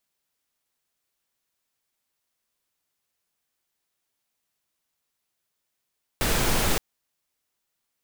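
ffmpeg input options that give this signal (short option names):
-f lavfi -i "anoisesrc=c=pink:a=0.363:d=0.57:r=44100:seed=1"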